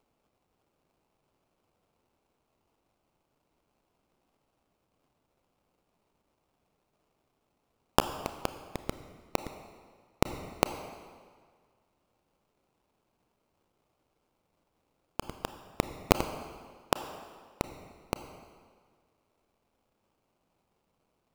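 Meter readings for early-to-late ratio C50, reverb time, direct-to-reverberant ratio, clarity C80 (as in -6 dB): 10.0 dB, 1.8 s, 9.0 dB, 11.0 dB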